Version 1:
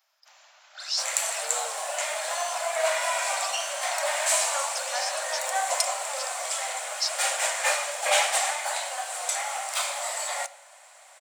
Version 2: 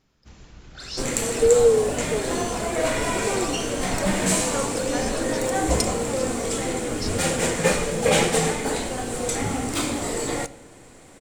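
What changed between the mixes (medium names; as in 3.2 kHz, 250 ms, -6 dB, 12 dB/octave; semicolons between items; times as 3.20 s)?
speech: add tilt EQ -3 dB/octave; master: remove steep high-pass 580 Hz 96 dB/octave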